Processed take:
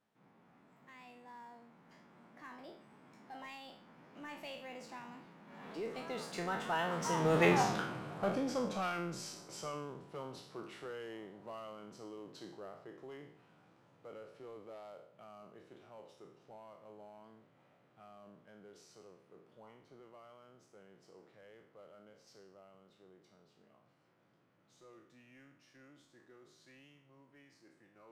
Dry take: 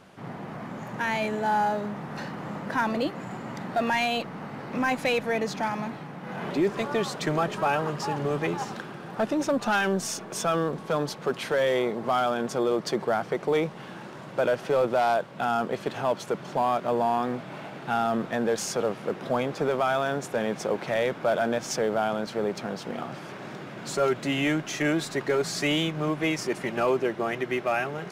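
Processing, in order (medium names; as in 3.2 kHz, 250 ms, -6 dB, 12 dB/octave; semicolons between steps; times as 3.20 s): spectral sustain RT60 0.59 s; Doppler pass-by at 7.54 s, 42 m/s, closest 10 m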